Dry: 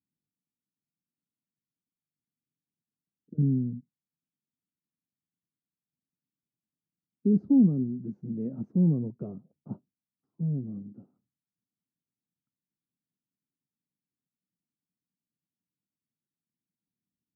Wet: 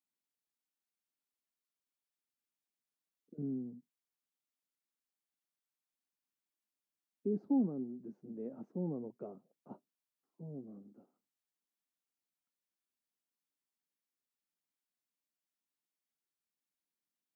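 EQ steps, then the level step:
dynamic equaliser 820 Hz, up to +5 dB, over −56 dBFS, Q 4.9
high-pass filter 470 Hz 12 dB per octave
0.0 dB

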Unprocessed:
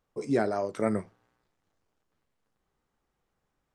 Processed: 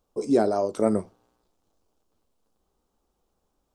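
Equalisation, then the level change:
parametric band 130 Hz −11 dB 0.67 octaves
parametric band 1,900 Hz −15 dB 1 octave
+7.0 dB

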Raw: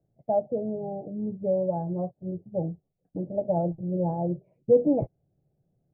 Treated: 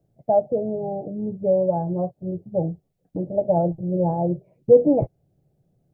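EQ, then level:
dynamic equaliser 230 Hz, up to −4 dB, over −40 dBFS, Q 1.9
+6.5 dB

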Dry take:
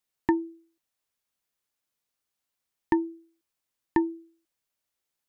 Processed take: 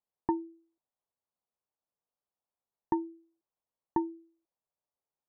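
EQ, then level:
low-pass filter 1,000 Hz 24 dB per octave
low-shelf EQ 160 Hz −8.5 dB
parametric band 300 Hz −6 dB 0.84 octaves
0.0 dB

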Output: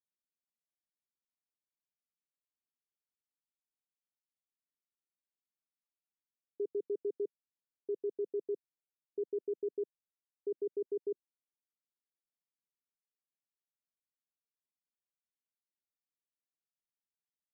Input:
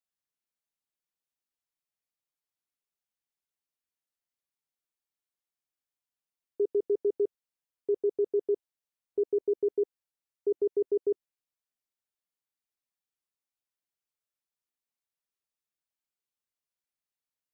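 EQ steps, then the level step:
four-pole ladder band-pass 250 Hz, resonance 20%
+5.0 dB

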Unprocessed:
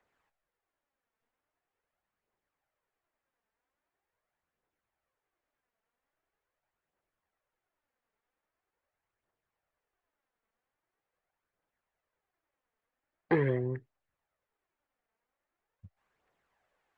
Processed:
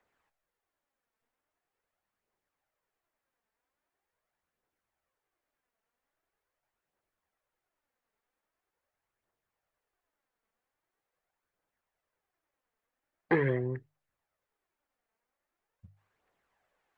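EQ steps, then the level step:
mains-hum notches 50/100/150 Hz
dynamic equaliser 1,700 Hz, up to +4 dB, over −45 dBFS, Q 1.1
0.0 dB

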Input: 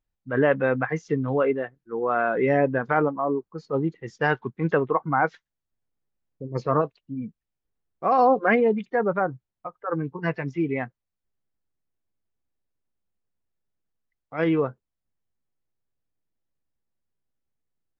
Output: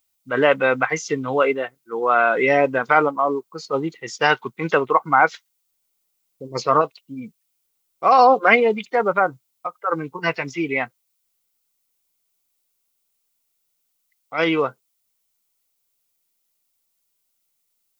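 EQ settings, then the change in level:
spectral tilt +4.5 dB per octave
notch filter 1,700 Hz, Q 5.3
+8.0 dB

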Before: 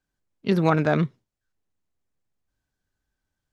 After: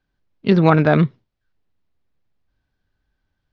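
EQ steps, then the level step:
low-pass filter 4,700 Hz 24 dB per octave
low-shelf EQ 130 Hz +4 dB
+6.0 dB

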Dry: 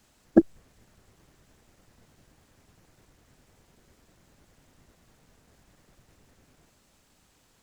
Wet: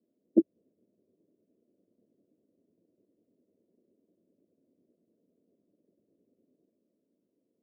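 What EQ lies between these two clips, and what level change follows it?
elliptic band-pass filter 130–690 Hz, stop band 40 dB
phaser with its sweep stopped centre 330 Hz, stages 4
−4.0 dB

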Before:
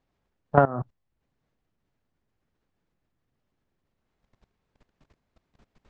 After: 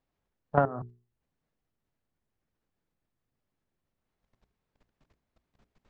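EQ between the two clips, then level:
mains-hum notches 60/120/180/240/300/360/420 Hz
−5.5 dB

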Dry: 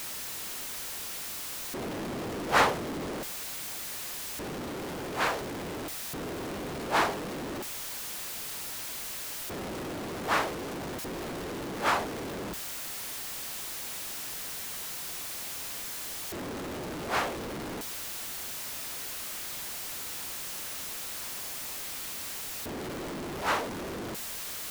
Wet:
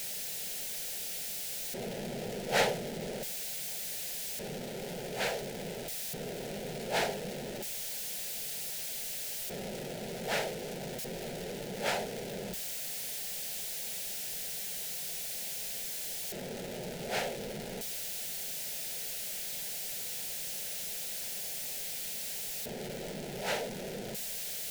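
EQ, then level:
phaser with its sweep stopped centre 300 Hz, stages 6
0.0 dB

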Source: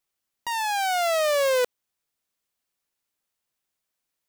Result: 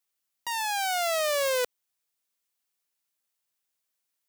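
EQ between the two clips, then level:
spectral tilt +1.5 dB per octave
−4.0 dB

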